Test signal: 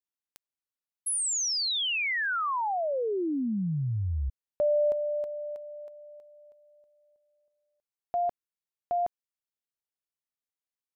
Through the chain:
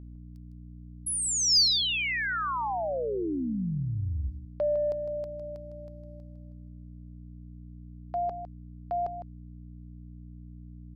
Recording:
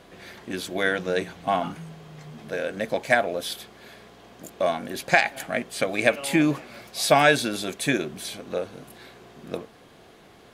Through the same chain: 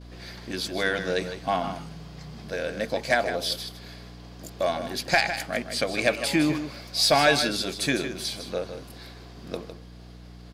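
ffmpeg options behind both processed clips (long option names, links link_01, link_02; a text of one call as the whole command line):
ffmpeg -i in.wav -af "agate=range=-18dB:threshold=-49dB:ratio=3:release=124:detection=peak,equalizer=frequency=4800:width=2.6:gain=11.5,acontrast=58,aeval=exprs='val(0)+0.0178*(sin(2*PI*60*n/s)+sin(2*PI*2*60*n/s)/2+sin(2*PI*3*60*n/s)/3+sin(2*PI*4*60*n/s)/4+sin(2*PI*5*60*n/s)/5)':channel_layout=same,aecho=1:1:156:0.316,volume=-8dB" out.wav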